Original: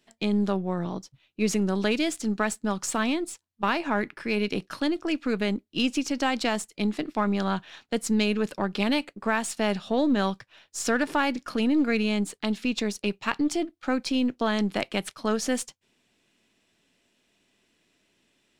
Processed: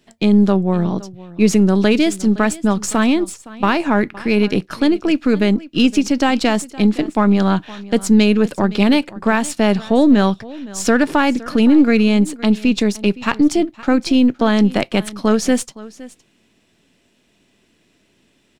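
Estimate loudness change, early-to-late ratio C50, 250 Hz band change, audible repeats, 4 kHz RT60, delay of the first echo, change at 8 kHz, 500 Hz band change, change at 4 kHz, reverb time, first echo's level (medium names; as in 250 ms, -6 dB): +11.0 dB, no reverb, +12.5 dB, 1, no reverb, 515 ms, +7.0 dB, +10.5 dB, +7.0 dB, no reverb, -19.5 dB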